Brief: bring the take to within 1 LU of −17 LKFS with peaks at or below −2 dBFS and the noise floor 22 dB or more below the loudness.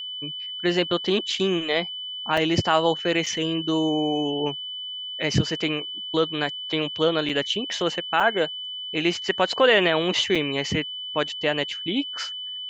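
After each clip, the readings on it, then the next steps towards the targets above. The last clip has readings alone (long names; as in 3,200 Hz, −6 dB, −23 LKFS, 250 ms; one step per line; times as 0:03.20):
number of dropouts 5; longest dropout 4.7 ms; interfering tone 3,000 Hz; level of the tone −31 dBFS; integrated loudness −24.0 LKFS; sample peak −6.5 dBFS; target loudness −17.0 LKFS
→ repair the gap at 0:02.37/0:03.26/0:07.29/0:08.20/0:10.35, 4.7 ms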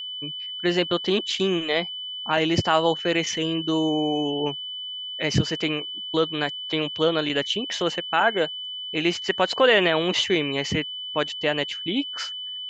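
number of dropouts 0; interfering tone 3,000 Hz; level of the tone −31 dBFS
→ notch filter 3,000 Hz, Q 30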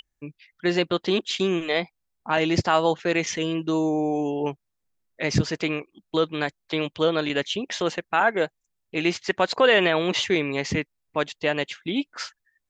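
interfering tone none found; integrated loudness −24.5 LKFS; sample peak −7.0 dBFS; target loudness −17.0 LKFS
→ level +7.5 dB
brickwall limiter −2 dBFS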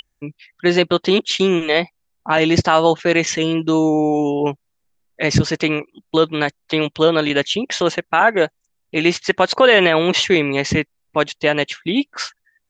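integrated loudness −17.5 LKFS; sample peak −2.0 dBFS; background noise floor −72 dBFS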